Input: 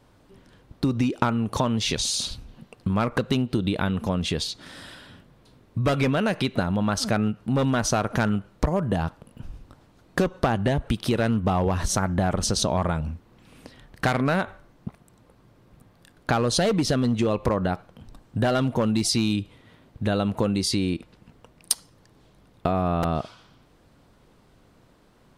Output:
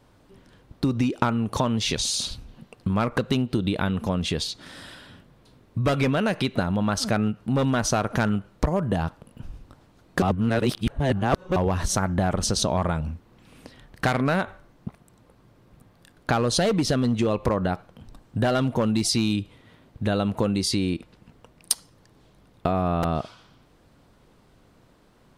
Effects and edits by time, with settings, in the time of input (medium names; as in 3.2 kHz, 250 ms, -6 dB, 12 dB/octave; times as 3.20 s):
10.22–11.56 s: reverse